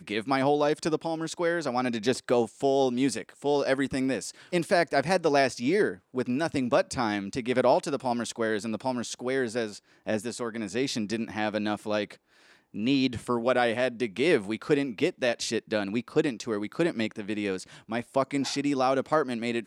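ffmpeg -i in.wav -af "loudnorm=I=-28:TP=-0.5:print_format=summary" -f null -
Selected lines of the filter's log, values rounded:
Input Integrated:    -28.0 LUFS
Input True Peak:     -10.4 dBTP
Input LRA:             4.2 LU
Input Threshold:     -38.1 LUFS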